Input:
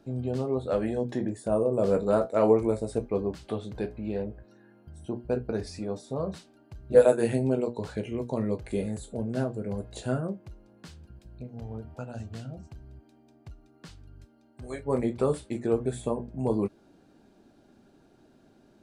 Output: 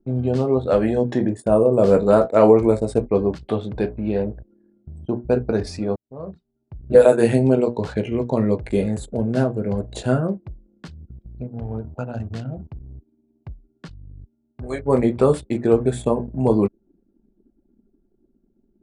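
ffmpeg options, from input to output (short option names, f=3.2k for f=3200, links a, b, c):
-filter_complex "[0:a]asplit=2[a][b];[a]atrim=end=5.96,asetpts=PTS-STARTPTS,afade=t=out:st=5.956:d=0.004:c=hsin[c];[b]atrim=start=5.96,asetpts=PTS-STARTPTS,afade=t=in:d=1.01[d];[c][d]concat=n=2:v=0:a=1,anlmdn=0.0251,highshelf=f=7.2k:g=-5,alimiter=level_in=10.5dB:limit=-1dB:release=50:level=0:latency=1,volume=-1dB"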